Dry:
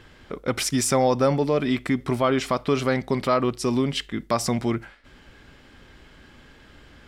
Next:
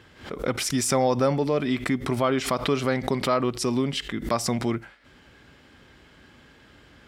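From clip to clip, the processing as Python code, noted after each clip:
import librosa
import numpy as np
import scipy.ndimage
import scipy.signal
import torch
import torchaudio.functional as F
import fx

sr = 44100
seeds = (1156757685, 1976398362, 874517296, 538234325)

y = scipy.signal.sosfilt(scipy.signal.butter(2, 65.0, 'highpass', fs=sr, output='sos'), x)
y = fx.pre_swell(y, sr, db_per_s=130.0)
y = y * librosa.db_to_amplitude(-2.0)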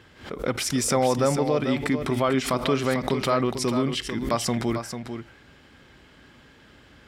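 y = x + 10.0 ** (-8.5 / 20.0) * np.pad(x, (int(445 * sr / 1000.0), 0))[:len(x)]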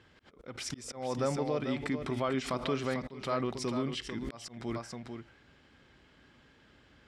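y = fx.auto_swell(x, sr, attack_ms=257.0)
y = scipy.signal.sosfilt(scipy.signal.butter(2, 7700.0, 'lowpass', fs=sr, output='sos'), y)
y = y * librosa.db_to_amplitude(-9.0)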